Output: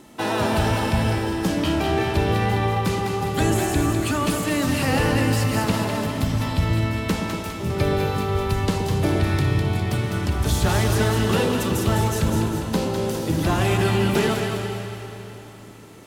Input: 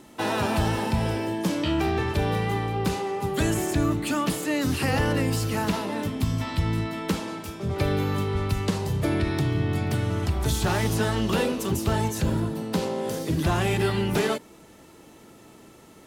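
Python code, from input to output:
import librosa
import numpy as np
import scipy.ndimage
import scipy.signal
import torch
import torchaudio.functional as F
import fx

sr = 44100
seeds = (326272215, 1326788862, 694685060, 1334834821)

y = fx.echo_split(x, sr, split_hz=810.0, low_ms=117, high_ms=204, feedback_pct=52, wet_db=-5.5)
y = fx.rev_freeverb(y, sr, rt60_s=3.8, hf_ratio=0.95, predelay_ms=85, drr_db=8.0)
y = y * 10.0 ** (2.0 / 20.0)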